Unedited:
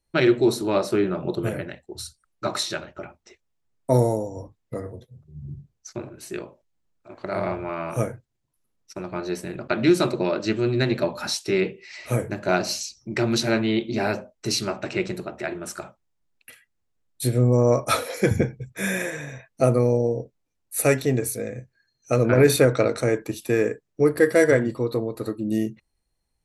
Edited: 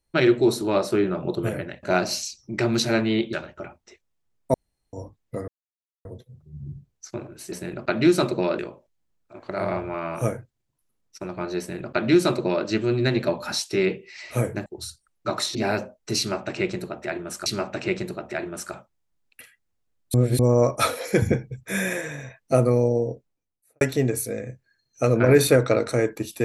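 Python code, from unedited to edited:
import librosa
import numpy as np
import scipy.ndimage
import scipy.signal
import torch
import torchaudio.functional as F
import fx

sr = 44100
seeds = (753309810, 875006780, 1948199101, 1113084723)

y = fx.studio_fade_out(x, sr, start_s=20.21, length_s=0.69)
y = fx.edit(y, sr, fx.swap(start_s=1.83, length_s=0.89, other_s=12.41, other_length_s=1.5),
    fx.room_tone_fill(start_s=3.93, length_s=0.39),
    fx.insert_silence(at_s=4.87, length_s=0.57),
    fx.duplicate(start_s=9.34, length_s=1.07, to_s=6.34),
    fx.repeat(start_s=14.55, length_s=1.27, count=2),
    fx.reverse_span(start_s=17.23, length_s=0.25), tone=tone)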